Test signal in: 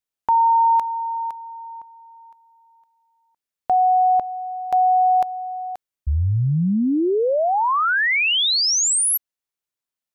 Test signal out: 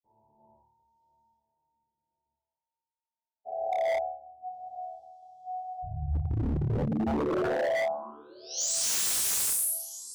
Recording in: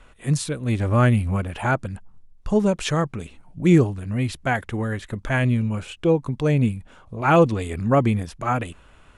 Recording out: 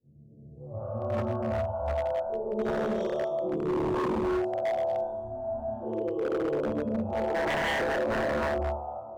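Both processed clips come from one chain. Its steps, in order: spectral dilation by 0.48 s; HPF 41 Hz 12 dB/oct; spectral noise reduction 23 dB; Chebyshev band-stop 520–7200 Hz, order 2; low-pass opened by the level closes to 490 Hz, open at -7.5 dBFS; bell 280 Hz -5.5 dB 1.8 oct; compressor 6:1, threshold -16 dBFS; resonator bank D2 fifth, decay 0.64 s; thinning echo 0.988 s, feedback 45%, high-pass 500 Hz, level -21.5 dB; non-linear reverb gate 0.38 s rising, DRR -7 dB; wavefolder -26 dBFS; gain +3 dB

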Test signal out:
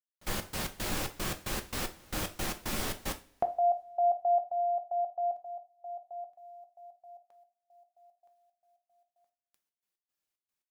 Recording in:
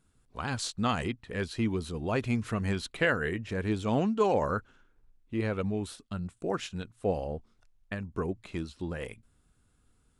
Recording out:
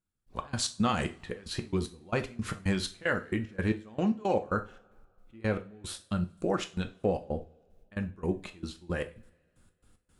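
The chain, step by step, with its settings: compressor 4:1, threshold -29 dBFS; step gate "..x.x.xx.x.x.x" 113 bpm -24 dB; two-slope reverb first 0.31 s, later 2.2 s, from -28 dB, DRR 6 dB; gain +4.5 dB

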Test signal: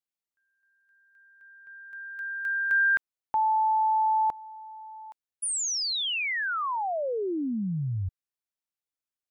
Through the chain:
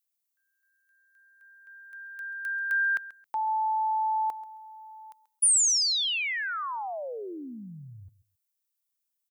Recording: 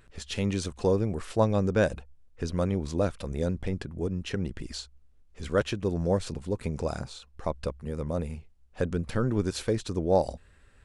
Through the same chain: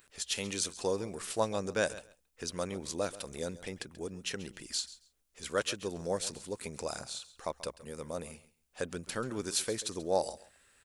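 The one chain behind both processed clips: RIAA curve recording; on a send: feedback echo 0.135 s, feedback 17%, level -17 dB; on the sum: gain -4 dB

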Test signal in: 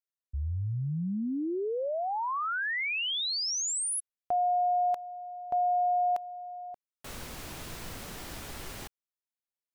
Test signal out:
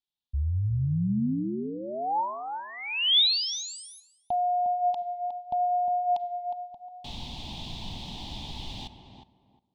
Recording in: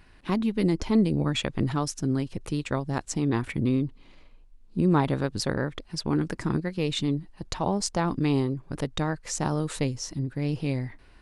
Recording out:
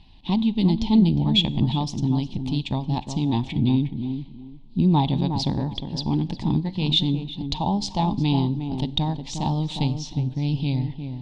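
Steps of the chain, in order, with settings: EQ curve 240 Hz 0 dB, 500 Hz -15 dB, 880 Hz +2 dB, 1400 Hz -28 dB, 3500 Hz +8 dB, 5500 Hz -7 dB, 12000 Hz -27 dB; tape echo 0.359 s, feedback 26%, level -5.5 dB, low-pass 1100 Hz; Schroeder reverb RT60 0.69 s, combs from 31 ms, DRR 19 dB; gain +5 dB

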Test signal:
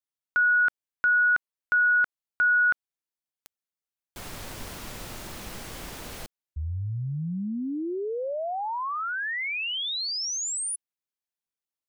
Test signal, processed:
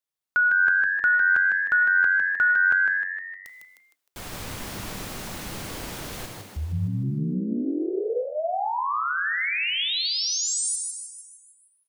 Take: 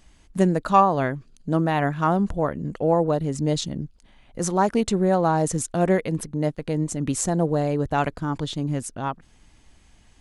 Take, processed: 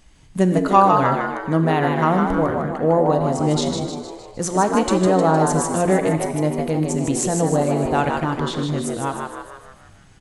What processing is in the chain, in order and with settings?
de-hum 174.1 Hz, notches 2; frequency-shifting echo 0.154 s, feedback 52%, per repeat +92 Hz, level -5 dB; non-linear reverb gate 0.17 s flat, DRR 8.5 dB; gain +2 dB

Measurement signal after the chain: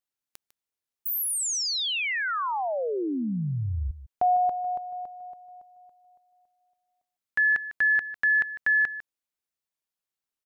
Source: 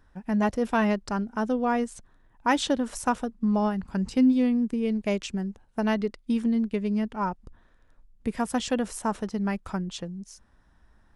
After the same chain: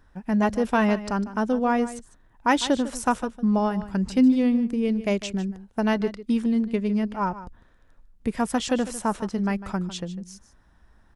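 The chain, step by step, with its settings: echo 0.151 s -14.5 dB; gain +2.5 dB

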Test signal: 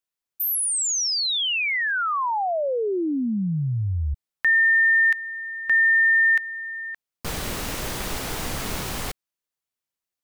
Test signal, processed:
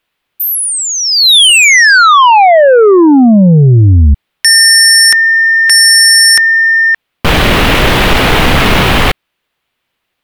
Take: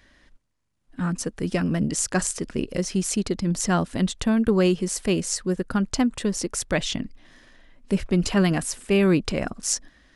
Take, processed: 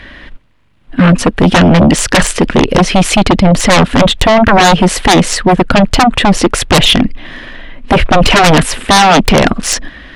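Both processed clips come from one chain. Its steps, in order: resonant high shelf 4400 Hz -12 dB, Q 1.5; sine folder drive 14 dB, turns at -8.5 dBFS; gain +6 dB

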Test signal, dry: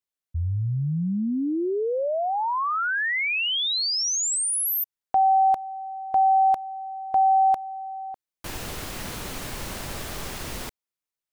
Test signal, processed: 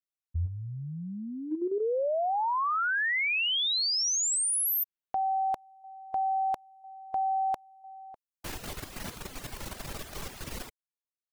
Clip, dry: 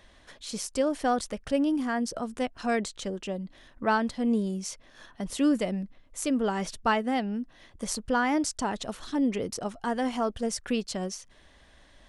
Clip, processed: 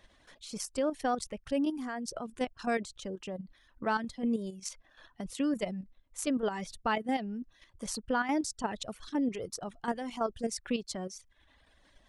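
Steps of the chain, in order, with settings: reverb removal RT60 0.87 s; level quantiser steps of 9 dB; gain -1 dB

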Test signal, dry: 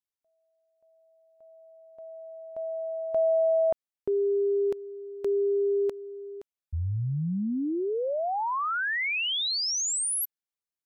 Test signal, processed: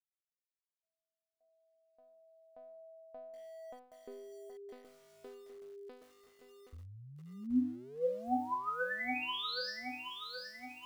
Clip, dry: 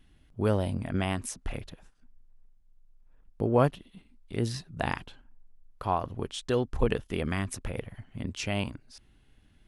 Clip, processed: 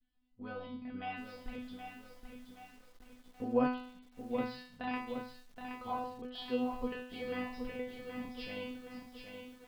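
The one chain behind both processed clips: expander -54 dBFS; vocal rider within 4 dB 0.5 s; resonator 250 Hz, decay 0.54 s, harmonics all, mix 100%; downsampling 11025 Hz; lo-fi delay 0.772 s, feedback 55%, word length 11-bit, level -6.5 dB; gain +6.5 dB

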